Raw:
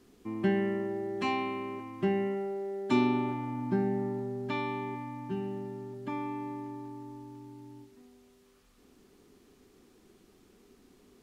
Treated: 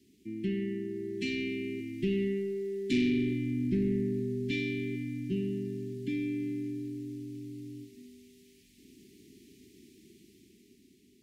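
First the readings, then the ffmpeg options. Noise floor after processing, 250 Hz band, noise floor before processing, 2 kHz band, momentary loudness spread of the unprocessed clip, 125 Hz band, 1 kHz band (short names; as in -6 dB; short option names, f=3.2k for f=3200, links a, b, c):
-63 dBFS, +1.5 dB, -63 dBFS, -0.5 dB, 16 LU, +2.0 dB, under -40 dB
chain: -af "highpass=78,dynaudnorm=f=280:g=9:m=8dB,asoftclip=type=tanh:threshold=-20.5dB,asuperstop=centerf=880:order=12:qfactor=0.54,volume=-2dB"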